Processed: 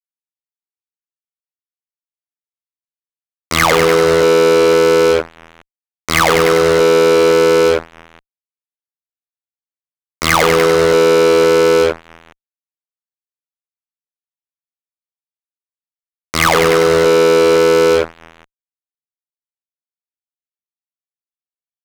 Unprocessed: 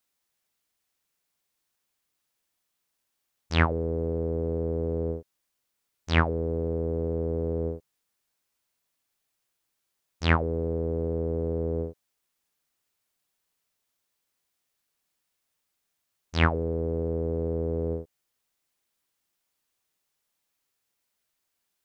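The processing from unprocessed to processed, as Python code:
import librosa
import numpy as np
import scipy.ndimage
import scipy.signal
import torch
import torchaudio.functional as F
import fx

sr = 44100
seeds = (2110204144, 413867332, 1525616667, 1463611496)

y = fx.cabinet(x, sr, low_hz=170.0, low_slope=24, high_hz=5600.0, hz=(180.0, 250.0, 400.0, 1200.0, 2100.0), db=(-10, -7, -3, 9, 10))
y = fx.echo_split(y, sr, split_hz=560.0, low_ms=511, high_ms=98, feedback_pct=52, wet_db=-12.0)
y = fx.fuzz(y, sr, gain_db=41.0, gate_db=-40.0)
y = y * librosa.db_to_amplitude(6.0)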